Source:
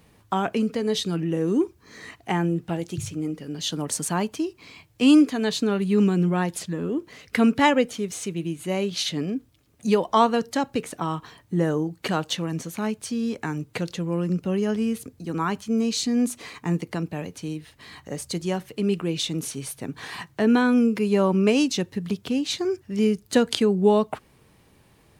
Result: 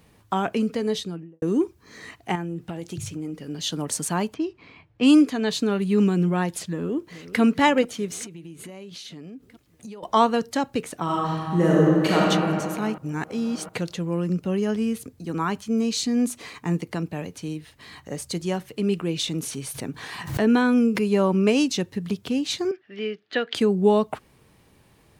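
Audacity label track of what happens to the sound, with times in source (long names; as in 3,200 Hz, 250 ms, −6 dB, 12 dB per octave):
0.820000	1.420000	fade out and dull
2.350000	3.500000	downward compressor, threshold −27 dBFS
4.340000	5.490000	low-pass that shuts in the quiet parts closes to 2,000 Hz, open at −14 dBFS
6.670000	7.410000	delay throw 430 ms, feedback 65%, level −14.5 dB
8.240000	10.030000	downward compressor 12 to 1, threshold −36 dBFS
11.030000	12.220000	thrown reverb, RT60 2.5 s, DRR −5.5 dB
12.980000	13.690000	reverse
19.190000	21.040000	background raised ahead of every attack at most 94 dB per second
22.710000	23.550000	loudspeaker in its box 470–3,600 Hz, peaks and dips at 540 Hz −4 dB, 940 Hz −10 dB, 1,800 Hz +5 dB, 3,200 Hz +3 dB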